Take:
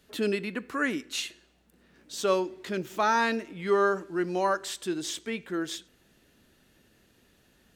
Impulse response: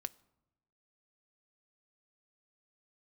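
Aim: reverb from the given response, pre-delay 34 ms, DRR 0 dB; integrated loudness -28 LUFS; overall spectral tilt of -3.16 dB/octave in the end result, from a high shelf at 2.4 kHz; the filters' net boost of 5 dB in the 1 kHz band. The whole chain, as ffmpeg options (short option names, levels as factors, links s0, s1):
-filter_complex "[0:a]equalizer=f=1000:t=o:g=5.5,highshelf=f=2400:g=3,asplit=2[s0][s1];[1:a]atrim=start_sample=2205,adelay=34[s2];[s1][s2]afir=irnorm=-1:irlink=0,volume=1.33[s3];[s0][s3]amix=inputs=2:normalize=0,volume=0.631"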